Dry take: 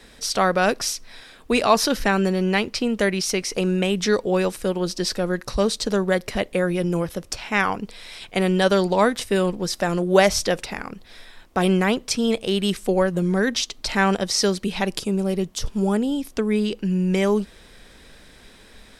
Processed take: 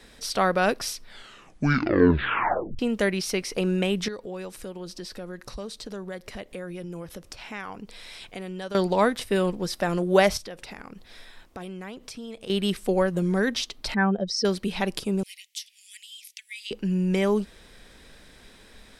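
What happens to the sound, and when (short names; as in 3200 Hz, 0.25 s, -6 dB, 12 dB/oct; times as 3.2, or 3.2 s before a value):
0.95 tape stop 1.84 s
4.08–8.75 compressor 2.5:1, threshold -35 dBFS
10.37–12.5 compressor 4:1, threshold -34 dBFS
13.94–14.45 spectral contrast raised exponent 2
15.23–16.71 steep high-pass 2000 Hz 72 dB/oct
whole clip: dynamic EQ 6800 Hz, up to -6 dB, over -43 dBFS, Q 1.7; gain -3 dB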